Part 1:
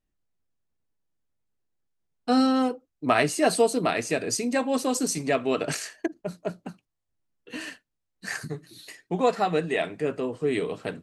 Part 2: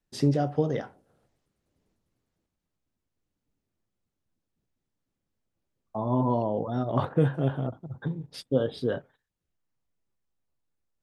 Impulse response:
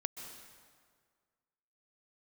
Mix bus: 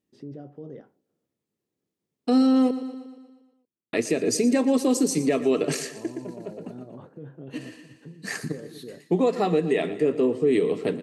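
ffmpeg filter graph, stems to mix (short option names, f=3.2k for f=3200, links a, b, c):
-filter_complex "[0:a]bandreject=f=1.5k:w=6.6,volume=1.5dB,asplit=3[a][b][c];[a]atrim=end=2.71,asetpts=PTS-STARTPTS,afade=t=out:st=2.706:d=0.004:c=hsin[d];[b]atrim=start=2.71:end=3.93,asetpts=PTS-STARTPTS,volume=0[e];[c]atrim=start=3.93,asetpts=PTS-STARTPTS,afade=t=in:d=0.004:c=hsin[f];[d][e][f]concat=n=3:v=0:a=1,asplit=2[g][h];[h]volume=-16.5dB[i];[1:a]aemphasis=mode=reproduction:type=75kf,alimiter=limit=-21dB:level=0:latency=1:release=13,volume=-16dB,asplit=2[j][k];[k]apad=whole_len=486366[l];[g][l]sidechaincompress=threshold=-54dB:ratio=10:attack=7.5:release=102[m];[i]aecho=0:1:118|236|354|472|590|708|826|944:1|0.56|0.314|0.176|0.0983|0.0551|0.0308|0.0173[n];[m][j][n]amix=inputs=3:normalize=0,highpass=170,lowshelf=f=540:t=q:w=1.5:g=6.5,alimiter=limit=-12.5dB:level=0:latency=1:release=169"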